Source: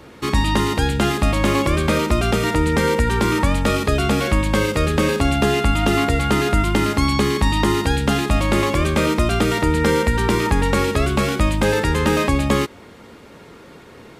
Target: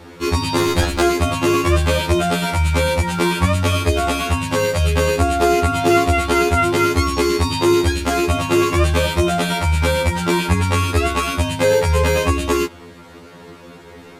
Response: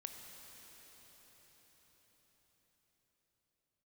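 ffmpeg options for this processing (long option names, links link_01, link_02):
-filter_complex "[0:a]asettb=1/sr,asplit=3[link_01][link_02][link_03];[link_01]atrim=end=0.584[link_04];[link_02]atrim=start=0.58:end=1.01,asetpts=PTS-STARTPTS,afade=type=in:duration=0.004:curve=qsin,afade=type=out:start_time=0.426:duration=0.004:curve=qsin,aeval=exprs='0.596*(cos(1*acos(clip(val(0)/0.596,-1,1)))-cos(1*PI/2))+0.211*(cos(6*acos(clip(val(0)/0.596,-1,1)))-cos(6*PI/2))+0.15*(cos(8*acos(clip(val(0)/0.596,-1,1)))-cos(8*PI/2))':channel_layout=same[link_05];[link_03]atrim=start=1.006[link_06];[link_04][link_05]acrossfade=duration=0.004:curve1=hsin:curve2=qsin[link_07];[link_07][link_06]acrossfade=duration=0.004:curve1=qsin:curve2=hsin,afftfilt=real='re*2*eq(mod(b,4),0)':imag='im*2*eq(mod(b,4),0)':win_size=2048:overlap=0.75,volume=5dB"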